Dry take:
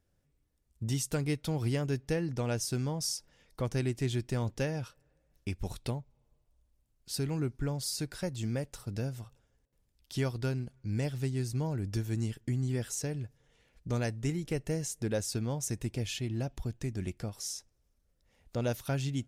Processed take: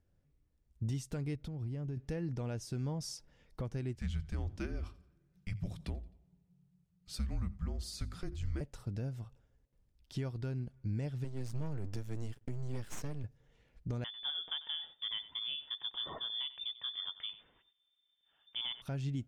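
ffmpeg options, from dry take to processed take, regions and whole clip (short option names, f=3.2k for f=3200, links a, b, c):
-filter_complex "[0:a]asettb=1/sr,asplit=3[a][b][c];[a]atrim=end=1.354[d];[b]atrim=start=1.35:end=1.97,asetpts=PTS-STARTPTS,afade=t=in:d=0.004:c=qsin,afade=t=out:st=0.616:d=0.004:c=qsin,lowshelf=f=390:g=10,acompressor=threshold=-37dB:ratio=10:attack=3.2:release=140:knee=1:detection=peak[e];[c]atrim=start=1.966[f];[d][e]acrossfade=d=0.004:c1=hsin:c2=qsin[g];[g][f]acrossfade=d=0.004:c1=qsin:c2=hsin,asettb=1/sr,asplit=3[h][i][j];[h]atrim=end=3.954[k];[i]atrim=start=3.95:end=8.61,asetpts=PTS-STARTPTS,afade=t=in:d=0.004:c=qsin,afade=t=out:st=4.656:d=0.004:c=qsin,afreqshift=-200,bandreject=f=50:t=h:w=6,bandreject=f=100:t=h:w=6,bandreject=f=150:t=h:w=6,bandreject=f=200:t=h:w=6,bandreject=f=250:t=h:w=6,bandreject=f=300:t=h:w=6,bandreject=f=350:t=h:w=6,aecho=1:1:87|174|261:0.0891|0.0357|0.0143,atrim=end_sample=205506[l];[j]atrim=start=8.606[m];[k][l]acrossfade=d=0.004:c1=hsin:c2=qsin[n];[n][m]acrossfade=d=0.004:c1=qsin:c2=hsin,asettb=1/sr,asplit=3[o][p][q];[o]atrim=end=11.244[r];[p]atrim=start=11.24:end=13.24,asetpts=PTS-STARTPTS,afade=t=in:d=0.004:c=qsin,afade=t=out:st=1.996:d=0.004:c=qsin,highshelf=f=5.8k:g=6,aeval=exprs='max(val(0),0)':c=same[s];[q]atrim=start=13.236[t];[r][s]acrossfade=d=0.004:c1=hsin:c2=qsin[u];[u][t]acrossfade=d=0.004:c1=qsin:c2=hsin,asettb=1/sr,asplit=3[v][w][x];[v]atrim=end=14.044[y];[w]atrim=start=14.04:end=18.82,asetpts=PTS-STARTPTS,afade=t=in:d=0.004:c=qsin,afade=t=out:st=4.776:d=0.004:c=qsin,lowpass=f=3.1k:t=q:w=0.5098,lowpass=f=3.1k:t=q:w=0.6013,lowpass=f=3.1k:t=q:w=0.9,lowpass=f=3.1k:t=q:w=2.563,afreqshift=-3600,aecho=1:1:94:0.15,atrim=end_sample=210798[z];[x]atrim=start=18.816[aa];[y][z]acrossfade=d=0.004:c1=hsin:c2=qsin[ab];[ab][aa]acrossfade=d=0.004:c1=qsin:c2=hsin,lowpass=f=3.4k:p=1,lowshelf=f=270:g=5.5,alimiter=level_in=1dB:limit=-24dB:level=0:latency=1:release=325,volume=-1dB,volume=-3dB"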